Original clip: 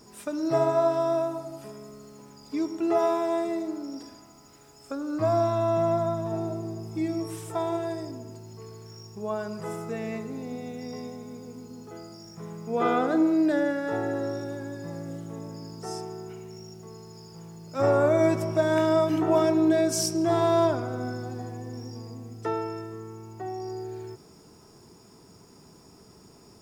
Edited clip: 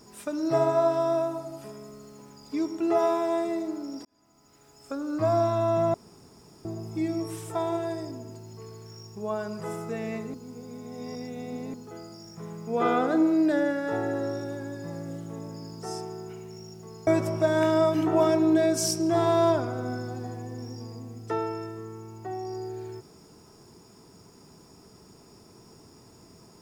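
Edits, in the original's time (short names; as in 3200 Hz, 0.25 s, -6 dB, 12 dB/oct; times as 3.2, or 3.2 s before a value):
4.05–4.93 fade in
5.94–6.65 room tone
10.34–11.74 reverse
17.07–18.22 cut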